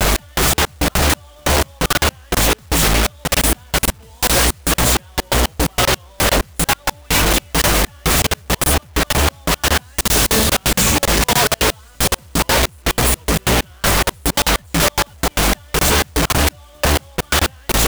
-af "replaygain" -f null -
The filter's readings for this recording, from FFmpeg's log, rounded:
track_gain = -1.5 dB
track_peak = 0.292